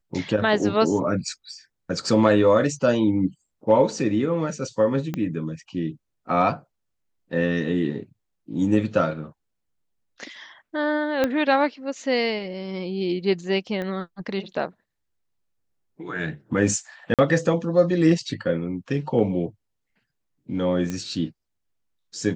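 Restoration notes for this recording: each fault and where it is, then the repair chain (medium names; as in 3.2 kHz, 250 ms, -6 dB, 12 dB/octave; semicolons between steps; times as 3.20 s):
5.14 s: pop -15 dBFS
11.24 s: pop -9 dBFS
13.82 s: pop -19 dBFS
17.14–17.19 s: dropout 47 ms
20.90 s: pop -16 dBFS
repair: de-click; interpolate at 17.14 s, 47 ms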